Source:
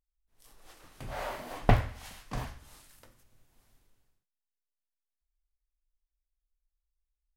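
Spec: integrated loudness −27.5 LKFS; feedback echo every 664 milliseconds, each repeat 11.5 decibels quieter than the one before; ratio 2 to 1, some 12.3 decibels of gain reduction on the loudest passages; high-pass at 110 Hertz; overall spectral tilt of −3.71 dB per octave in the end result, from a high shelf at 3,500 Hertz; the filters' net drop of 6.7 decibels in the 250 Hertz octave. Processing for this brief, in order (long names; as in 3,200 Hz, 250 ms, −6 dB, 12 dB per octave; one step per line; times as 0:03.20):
high-pass filter 110 Hz
parametric band 250 Hz −9 dB
high-shelf EQ 3,500 Hz +5 dB
downward compressor 2 to 1, threshold −46 dBFS
repeating echo 664 ms, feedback 27%, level −11.5 dB
level +20 dB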